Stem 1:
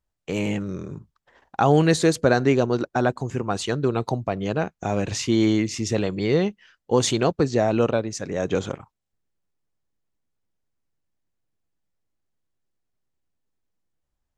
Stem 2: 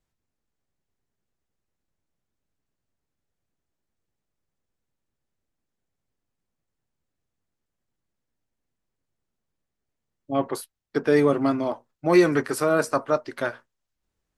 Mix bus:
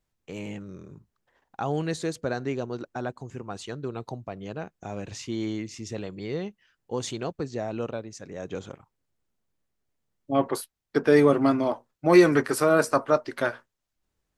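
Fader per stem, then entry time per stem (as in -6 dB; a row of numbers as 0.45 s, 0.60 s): -11.0 dB, +1.0 dB; 0.00 s, 0.00 s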